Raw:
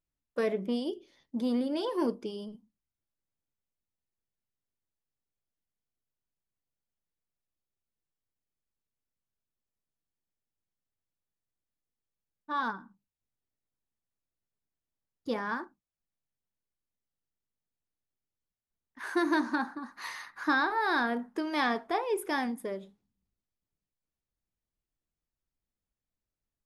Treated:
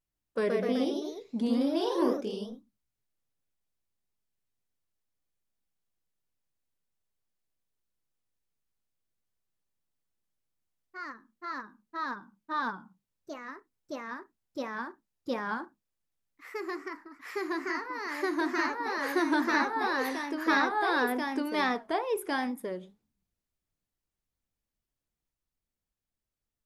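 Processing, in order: wow and flutter 98 cents; echoes that change speed 0.146 s, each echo +1 st, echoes 3

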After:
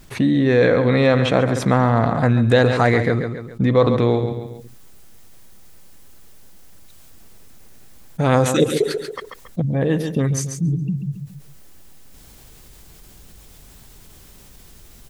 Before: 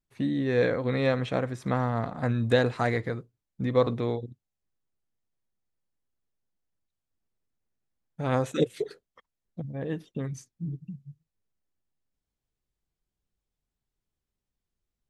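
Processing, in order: high shelf 6500 Hz -2.5 dB, from 4.14 s +6 dB; feedback echo 0.138 s, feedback 22%, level -13 dB; fast leveller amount 50%; gain +6.5 dB

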